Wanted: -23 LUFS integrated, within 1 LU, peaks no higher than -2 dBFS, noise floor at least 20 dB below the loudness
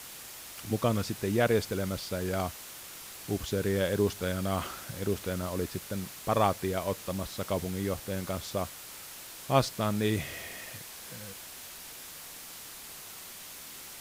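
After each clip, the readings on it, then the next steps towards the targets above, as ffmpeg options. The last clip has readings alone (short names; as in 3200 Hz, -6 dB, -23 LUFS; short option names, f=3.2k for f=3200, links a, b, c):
noise floor -46 dBFS; noise floor target -53 dBFS; loudness -33.0 LUFS; peak -9.5 dBFS; loudness target -23.0 LUFS
-> -af "afftdn=nr=7:nf=-46"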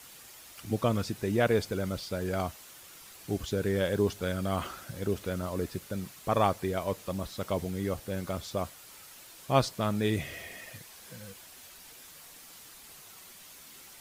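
noise floor -51 dBFS; noise floor target -52 dBFS
-> -af "afftdn=nr=6:nf=-51"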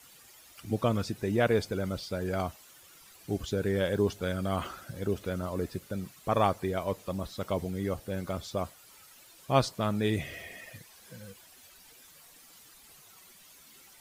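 noise floor -56 dBFS; loudness -31.5 LUFS; peak -9.5 dBFS; loudness target -23.0 LUFS
-> -af "volume=8.5dB,alimiter=limit=-2dB:level=0:latency=1"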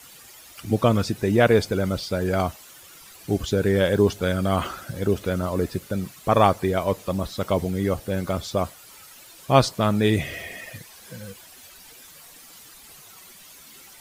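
loudness -23.5 LUFS; peak -2.0 dBFS; noise floor -47 dBFS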